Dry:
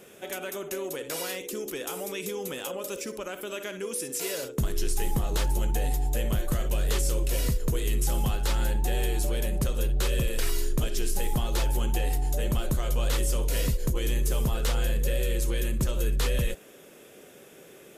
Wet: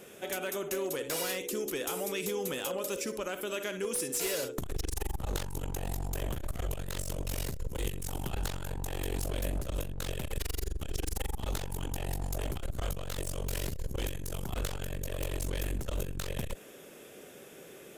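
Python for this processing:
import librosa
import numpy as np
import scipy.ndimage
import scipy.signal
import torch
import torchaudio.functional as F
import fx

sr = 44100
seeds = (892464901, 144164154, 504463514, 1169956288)

y = np.minimum(x, 2.0 * 10.0 ** (-26.5 / 20.0) - x)
y = fx.transformer_sat(y, sr, knee_hz=130.0)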